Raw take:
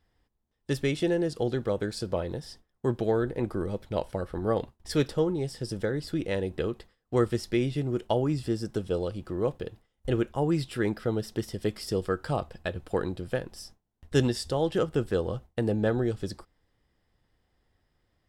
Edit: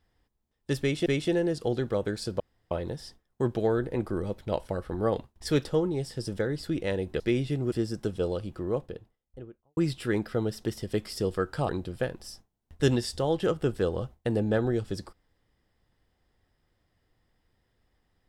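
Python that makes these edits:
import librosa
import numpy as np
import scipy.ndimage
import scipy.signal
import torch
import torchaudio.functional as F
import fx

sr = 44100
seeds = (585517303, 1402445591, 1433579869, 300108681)

y = fx.studio_fade_out(x, sr, start_s=9.09, length_s=1.39)
y = fx.edit(y, sr, fx.repeat(start_s=0.81, length_s=0.25, count=2),
    fx.insert_room_tone(at_s=2.15, length_s=0.31),
    fx.cut(start_s=6.64, length_s=0.82),
    fx.cut(start_s=7.98, length_s=0.45),
    fx.cut(start_s=12.4, length_s=0.61), tone=tone)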